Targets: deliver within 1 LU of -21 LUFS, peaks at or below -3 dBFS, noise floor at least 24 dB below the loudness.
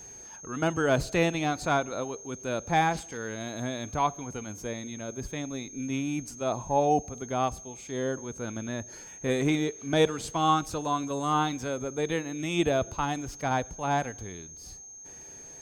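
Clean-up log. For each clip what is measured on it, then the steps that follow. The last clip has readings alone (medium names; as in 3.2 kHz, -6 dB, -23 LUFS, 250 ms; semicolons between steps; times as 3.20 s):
steady tone 6.4 kHz; tone level -44 dBFS; loudness -29.5 LUFS; peak level -12.5 dBFS; loudness target -21.0 LUFS
-> band-stop 6.4 kHz, Q 30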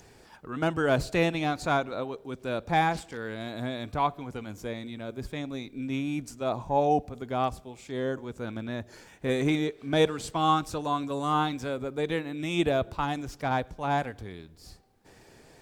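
steady tone not found; loudness -29.5 LUFS; peak level -12.5 dBFS; loudness target -21.0 LUFS
-> trim +8.5 dB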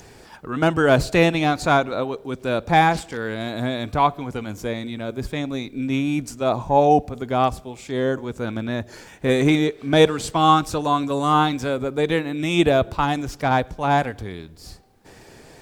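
loudness -21.0 LUFS; peak level -4.0 dBFS; noise floor -46 dBFS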